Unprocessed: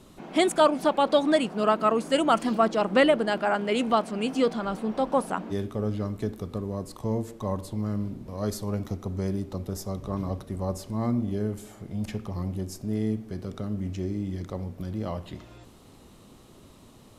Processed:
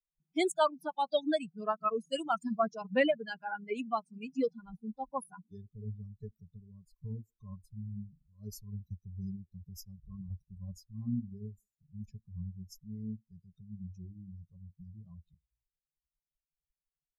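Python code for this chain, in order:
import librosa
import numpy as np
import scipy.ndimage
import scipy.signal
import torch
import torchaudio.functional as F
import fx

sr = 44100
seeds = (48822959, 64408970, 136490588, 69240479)

y = fx.bin_expand(x, sr, power=3.0)
y = y * librosa.db_to_amplitude(-3.5)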